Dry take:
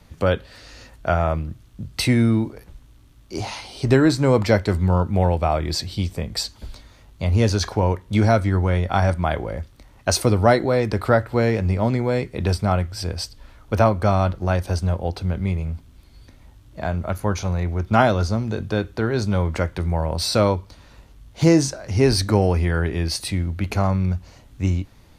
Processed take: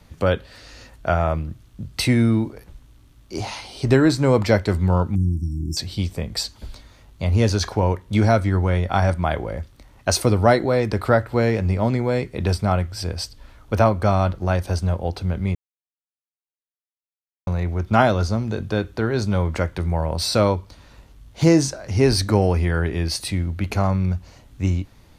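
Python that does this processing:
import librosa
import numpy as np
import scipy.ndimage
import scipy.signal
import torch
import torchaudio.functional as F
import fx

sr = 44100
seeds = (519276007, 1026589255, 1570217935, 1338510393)

y = fx.brickwall_bandstop(x, sr, low_hz=350.0, high_hz=5200.0, at=(5.15, 5.77))
y = fx.edit(y, sr, fx.silence(start_s=15.55, length_s=1.92), tone=tone)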